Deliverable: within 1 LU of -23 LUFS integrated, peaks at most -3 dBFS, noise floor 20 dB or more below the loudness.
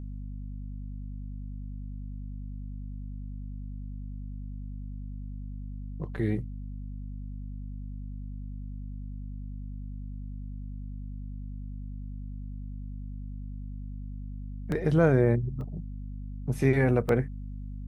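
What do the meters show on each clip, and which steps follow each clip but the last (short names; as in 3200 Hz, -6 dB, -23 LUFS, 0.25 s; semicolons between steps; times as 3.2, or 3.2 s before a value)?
dropouts 3; longest dropout 1.3 ms; hum 50 Hz; harmonics up to 250 Hz; hum level -35 dBFS; loudness -34.0 LUFS; peak -10.5 dBFS; loudness target -23.0 LUFS
-> interpolate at 14.72/15.61/17.09, 1.3 ms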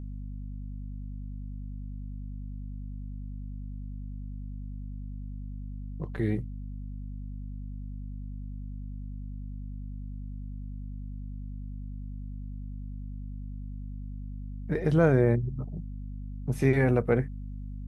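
dropouts 0; hum 50 Hz; harmonics up to 250 Hz; hum level -35 dBFS
-> notches 50/100/150/200/250 Hz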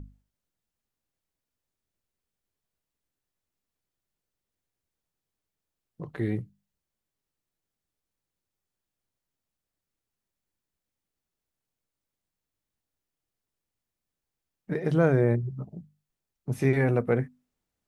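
hum none; loudness -26.5 LUFS; peak -11.0 dBFS; loudness target -23.0 LUFS
-> gain +3.5 dB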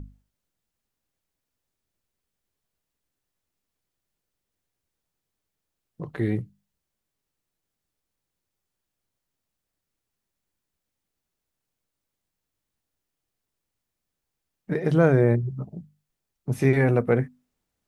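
loudness -23.0 LUFS; peak -7.5 dBFS; noise floor -84 dBFS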